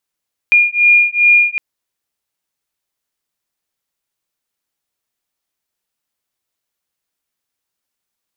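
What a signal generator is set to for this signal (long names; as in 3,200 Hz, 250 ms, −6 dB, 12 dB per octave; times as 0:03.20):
two tones that beat 2,420 Hz, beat 2.5 Hz, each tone −11 dBFS 1.06 s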